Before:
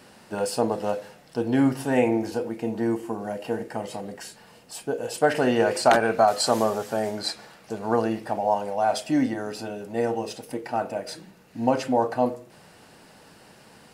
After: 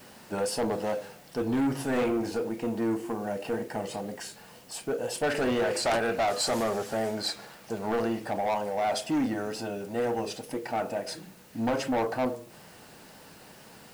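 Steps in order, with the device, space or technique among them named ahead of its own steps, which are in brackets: compact cassette (soft clip -22.5 dBFS, distortion -8 dB; LPF 13000 Hz; wow and flutter; white noise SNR 28 dB)

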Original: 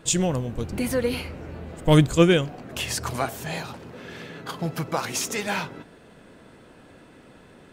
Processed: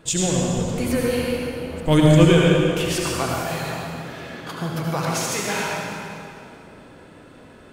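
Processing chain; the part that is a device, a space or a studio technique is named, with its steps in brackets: stairwell (reverb RT60 2.6 s, pre-delay 67 ms, DRR -3 dB); gain -1 dB

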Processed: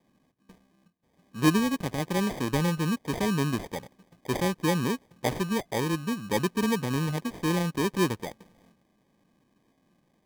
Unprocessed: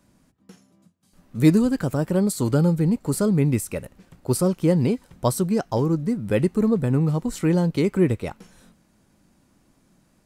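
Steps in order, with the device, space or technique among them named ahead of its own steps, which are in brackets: HPF 150 Hz 12 dB/oct; crushed at another speed (playback speed 0.8×; sample-and-hold 40×; playback speed 1.25×); gain -5.5 dB

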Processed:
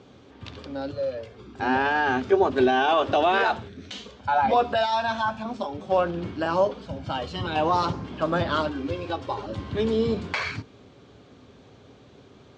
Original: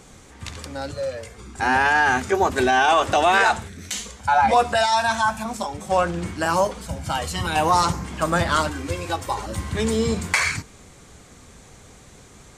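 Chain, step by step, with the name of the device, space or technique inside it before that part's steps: guitar cabinet (speaker cabinet 84–4500 Hz, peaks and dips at 110 Hz +6 dB, 270 Hz +8 dB, 400 Hz +7 dB, 590 Hz +5 dB, 2000 Hz -6 dB, 3200 Hz +3 dB); gain -5.5 dB

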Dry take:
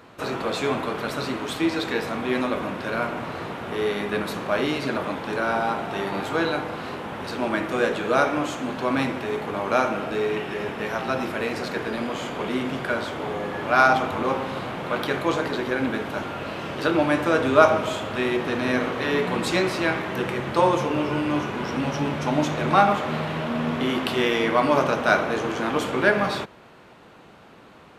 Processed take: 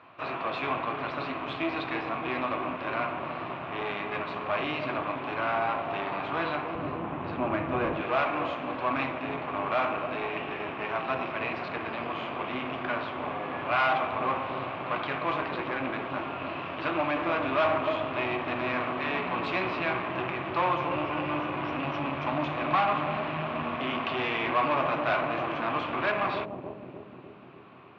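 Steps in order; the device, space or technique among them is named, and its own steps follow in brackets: analogue delay pedal into a guitar amplifier (analogue delay 0.299 s, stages 1024, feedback 67%, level -5 dB; tube stage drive 21 dB, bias 0.7; speaker cabinet 93–3600 Hz, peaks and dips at 210 Hz -8 dB, 450 Hz -7 dB, 680 Hz +6 dB, 1100 Hz +9 dB, 2500 Hz +8 dB); 6.75–8.01 tilt -3 dB/oct; gain -3.5 dB

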